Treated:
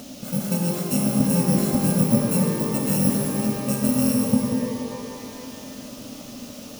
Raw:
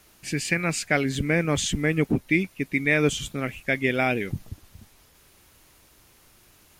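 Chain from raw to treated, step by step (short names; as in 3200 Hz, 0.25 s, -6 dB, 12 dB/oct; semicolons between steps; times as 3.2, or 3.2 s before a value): FFT order left unsorted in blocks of 128 samples; low shelf 360 Hz -4.5 dB; small resonant body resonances 250/580 Hz, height 18 dB, ringing for 35 ms; upward compressor, threshold -26 dBFS; band noise 2500–6600 Hz -39 dBFS; graphic EQ 125/250/500/2000/4000 Hz +7/+12/+3/-3/-5 dB; shimmer reverb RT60 2.2 s, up +12 st, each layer -8 dB, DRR 0.5 dB; gain -7.5 dB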